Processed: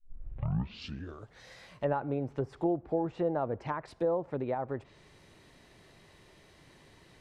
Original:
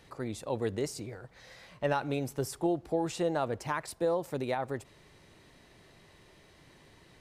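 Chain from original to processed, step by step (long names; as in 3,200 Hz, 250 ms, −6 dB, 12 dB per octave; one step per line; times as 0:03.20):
turntable start at the beginning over 1.43 s
treble cut that deepens with the level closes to 1,100 Hz, closed at −29 dBFS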